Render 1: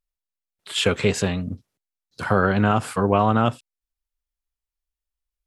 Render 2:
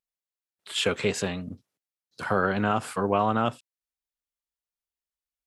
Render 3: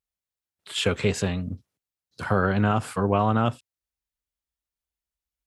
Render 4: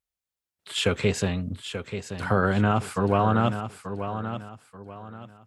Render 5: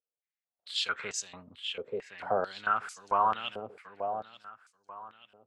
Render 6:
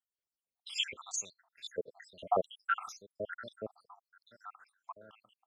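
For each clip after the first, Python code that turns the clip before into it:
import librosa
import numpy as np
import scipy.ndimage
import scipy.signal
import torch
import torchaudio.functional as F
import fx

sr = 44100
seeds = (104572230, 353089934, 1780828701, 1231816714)

y1 = fx.highpass(x, sr, hz=200.0, slope=6)
y1 = F.gain(torch.from_numpy(y1), -4.0).numpy()
y2 = fx.peak_eq(y1, sr, hz=61.0, db=13.5, octaves=2.3)
y3 = fx.echo_feedback(y2, sr, ms=884, feedback_pct=31, wet_db=-9.5)
y4 = fx.filter_held_bandpass(y3, sr, hz=4.5, low_hz=480.0, high_hz=6200.0)
y4 = F.gain(torch.from_numpy(y4), 4.0).numpy()
y5 = fx.spec_dropout(y4, sr, seeds[0], share_pct=80)
y5 = F.gain(torch.from_numpy(y5), 3.5).numpy()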